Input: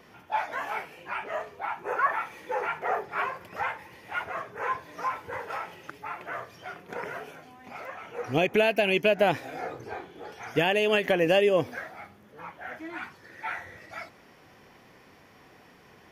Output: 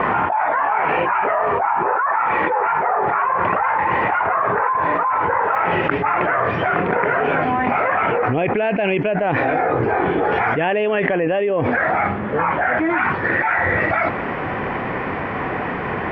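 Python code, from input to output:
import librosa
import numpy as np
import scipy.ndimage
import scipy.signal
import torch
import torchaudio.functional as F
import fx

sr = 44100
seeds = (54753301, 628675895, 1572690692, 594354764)

y = scipy.signal.sosfilt(scipy.signal.butter(4, 2300.0, 'lowpass', fs=sr, output='sos'), x)
y = fx.peak_eq(y, sr, hz=1000.0, db=fx.steps((0.0, 12.5), (5.55, 2.5)), octaves=1.3)
y = fx.env_flatten(y, sr, amount_pct=100)
y = y * 10.0 ** (-9.5 / 20.0)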